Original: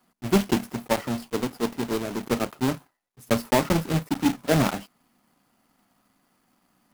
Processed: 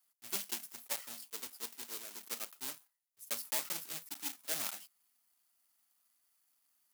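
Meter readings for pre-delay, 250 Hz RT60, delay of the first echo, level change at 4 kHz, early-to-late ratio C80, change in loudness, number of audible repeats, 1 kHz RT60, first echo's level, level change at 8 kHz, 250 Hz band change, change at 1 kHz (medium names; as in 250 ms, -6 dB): no reverb, no reverb, no echo, -9.5 dB, no reverb, -13.5 dB, no echo, no reverb, no echo, -3.5 dB, -32.5 dB, -21.5 dB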